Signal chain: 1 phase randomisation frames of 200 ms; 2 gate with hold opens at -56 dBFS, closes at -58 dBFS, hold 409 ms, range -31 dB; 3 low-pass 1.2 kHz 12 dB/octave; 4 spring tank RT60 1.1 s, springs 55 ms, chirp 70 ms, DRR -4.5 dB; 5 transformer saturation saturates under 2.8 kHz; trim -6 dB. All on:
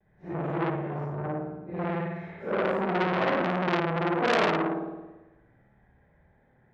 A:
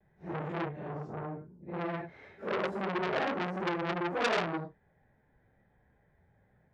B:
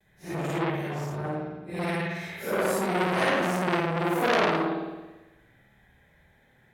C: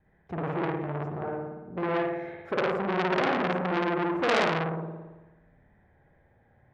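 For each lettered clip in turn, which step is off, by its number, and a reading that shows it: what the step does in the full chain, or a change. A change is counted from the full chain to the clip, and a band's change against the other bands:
4, 4 kHz band +2.5 dB; 3, 4 kHz band +2.0 dB; 1, 125 Hz band -1.5 dB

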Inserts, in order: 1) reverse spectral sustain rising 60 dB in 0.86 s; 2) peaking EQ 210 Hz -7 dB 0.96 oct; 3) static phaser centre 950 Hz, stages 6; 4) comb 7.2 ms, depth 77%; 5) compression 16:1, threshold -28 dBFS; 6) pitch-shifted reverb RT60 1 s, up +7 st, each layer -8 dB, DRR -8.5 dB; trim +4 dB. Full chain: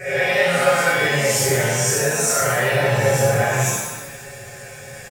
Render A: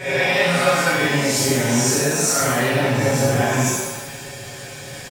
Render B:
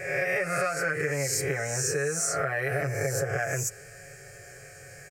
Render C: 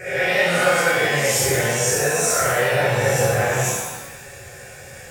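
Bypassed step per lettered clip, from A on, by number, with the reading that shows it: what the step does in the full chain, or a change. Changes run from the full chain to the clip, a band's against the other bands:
3, 250 Hz band +7.5 dB; 6, 4 kHz band -4.0 dB; 4, 125 Hz band -2.0 dB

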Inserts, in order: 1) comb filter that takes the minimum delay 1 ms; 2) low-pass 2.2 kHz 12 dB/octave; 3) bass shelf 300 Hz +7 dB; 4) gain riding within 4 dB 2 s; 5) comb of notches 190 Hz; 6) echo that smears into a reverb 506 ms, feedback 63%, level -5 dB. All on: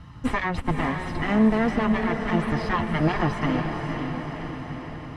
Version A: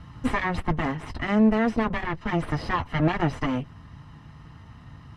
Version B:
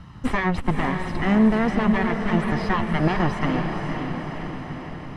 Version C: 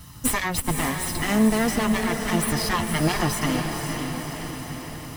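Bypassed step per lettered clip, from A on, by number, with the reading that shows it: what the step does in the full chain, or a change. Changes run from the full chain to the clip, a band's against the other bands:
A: 6, echo-to-direct -3.0 dB to none; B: 5, loudness change +2.0 LU; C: 2, 4 kHz band +9.0 dB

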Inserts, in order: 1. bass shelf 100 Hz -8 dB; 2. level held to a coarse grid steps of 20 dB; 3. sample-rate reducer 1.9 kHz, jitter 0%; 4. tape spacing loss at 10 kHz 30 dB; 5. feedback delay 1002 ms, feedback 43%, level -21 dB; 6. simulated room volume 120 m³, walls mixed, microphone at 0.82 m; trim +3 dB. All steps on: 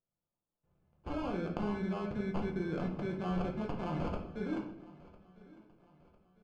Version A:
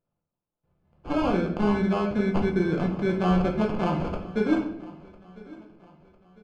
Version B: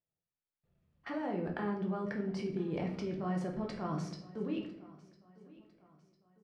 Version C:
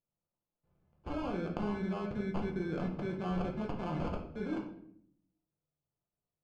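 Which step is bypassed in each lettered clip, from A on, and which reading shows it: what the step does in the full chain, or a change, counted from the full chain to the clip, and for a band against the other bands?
2, crest factor change -2.0 dB; 3, crest factor change -2.0 dB; 5, momentary loudness spread change -2 LU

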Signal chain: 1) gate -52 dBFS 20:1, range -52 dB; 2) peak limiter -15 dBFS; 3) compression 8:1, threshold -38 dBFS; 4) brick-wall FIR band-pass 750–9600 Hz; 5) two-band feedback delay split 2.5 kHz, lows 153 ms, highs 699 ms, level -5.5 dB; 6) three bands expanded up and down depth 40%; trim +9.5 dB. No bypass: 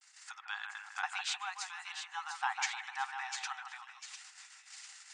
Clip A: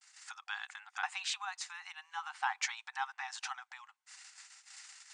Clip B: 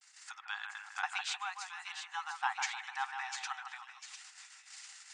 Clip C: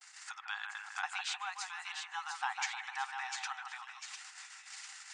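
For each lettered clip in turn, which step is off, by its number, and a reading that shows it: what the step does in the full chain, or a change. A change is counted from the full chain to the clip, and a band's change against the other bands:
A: 5, momentary loudness spread change +3 LU; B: 2, 8 kHz band -1.5 dB; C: 6, crest factor change -1.5 dB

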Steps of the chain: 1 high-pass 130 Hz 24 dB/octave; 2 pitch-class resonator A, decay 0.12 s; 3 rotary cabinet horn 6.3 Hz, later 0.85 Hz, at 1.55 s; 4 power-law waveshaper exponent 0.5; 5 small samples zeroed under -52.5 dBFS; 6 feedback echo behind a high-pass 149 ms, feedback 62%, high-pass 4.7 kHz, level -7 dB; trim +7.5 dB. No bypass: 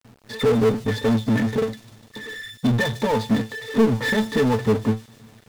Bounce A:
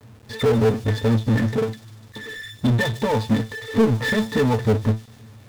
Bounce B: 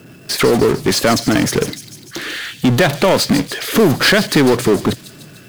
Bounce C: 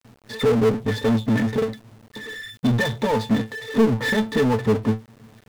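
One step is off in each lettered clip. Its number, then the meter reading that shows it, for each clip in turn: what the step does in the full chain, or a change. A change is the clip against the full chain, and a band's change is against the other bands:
1, 125 Hz band +4.5 dB; 2, 8 kHz band +10.5 dB; 6, echo-to-direct -21.0 dB to none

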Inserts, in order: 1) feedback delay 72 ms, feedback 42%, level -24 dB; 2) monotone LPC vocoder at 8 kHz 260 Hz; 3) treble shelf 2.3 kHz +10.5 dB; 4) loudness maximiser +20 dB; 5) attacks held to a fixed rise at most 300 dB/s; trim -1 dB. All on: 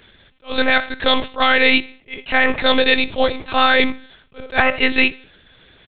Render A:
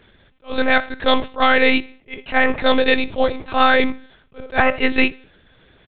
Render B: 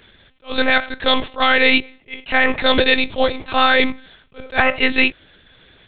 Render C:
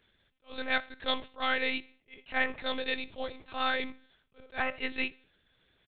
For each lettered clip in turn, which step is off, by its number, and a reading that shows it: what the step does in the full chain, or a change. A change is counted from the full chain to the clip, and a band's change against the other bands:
3, 4 kHz band -5.5 dB; 1, 125 Hz band +1.5 dB; 4, crest factor change +5.5 dB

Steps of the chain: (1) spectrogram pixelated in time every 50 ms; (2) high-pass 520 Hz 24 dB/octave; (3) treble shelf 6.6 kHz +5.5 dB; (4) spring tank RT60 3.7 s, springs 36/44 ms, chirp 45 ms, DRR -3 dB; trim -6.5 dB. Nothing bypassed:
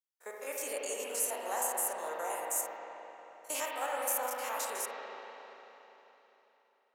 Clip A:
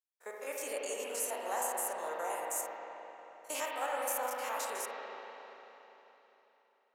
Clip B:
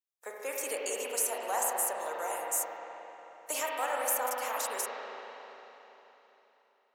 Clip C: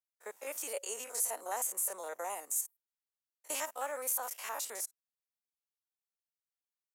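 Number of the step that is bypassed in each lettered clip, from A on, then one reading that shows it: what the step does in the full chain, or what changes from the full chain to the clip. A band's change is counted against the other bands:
3, 8 kHz band -3.5 dB; 1, loudness change +2.5 LU; 4, momentary loudness spread change -9 LU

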